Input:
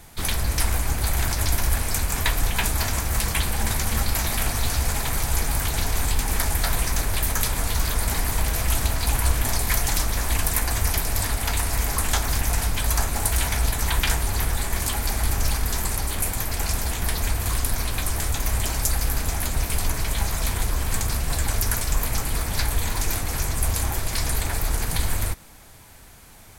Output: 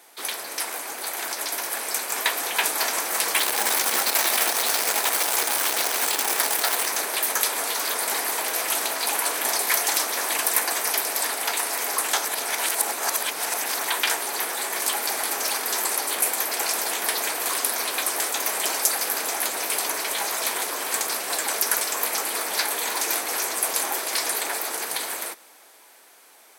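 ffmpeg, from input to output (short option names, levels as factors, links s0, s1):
-filter_complex "[0:a]asettb=1/sr,asplit=3[s0][s1][s2];[s0]atrim=end=3.364[s3];[s1]atrim=start=3.36:end=6.89,asetpts=PTS-STARTPTS,afade=t=in:d=0.004:c=qsin,afade=t=out:st=3.526:d=0.004:c=qsin,acrusher=bits=5:dc=4:mix=0:aa=0.000001[s4];[s2]atrim=start=6.886[s5];[s3][s4]acrossfade=d=0.004:c1=hsin:c2=qsin[s6];[s6][s5]acrossfade=d=0.004:c1=qsin:c2=hsin,asplit=3[s7][s8][s9];[s7]atrim=end=12.222[s10];[s8]atrim=start=12.218:end=13.852,asetpts=PTS-STARTPTS,areverse[s11];[s9]atrim=start=13.848[s12];[s10][s11]acrossfade=d=0.004:c1=hsin:c2=hsin[s13];[s13][s12]acrossfade=d=0.004:c1=hsin:c2=hsin,highpass=f=360:w=0.5412,highpass=f=360:w=1.3066,bandreject=f=7000:w=19,dynaudnorm=f=210:g=21:m=3.76,volume=0.794"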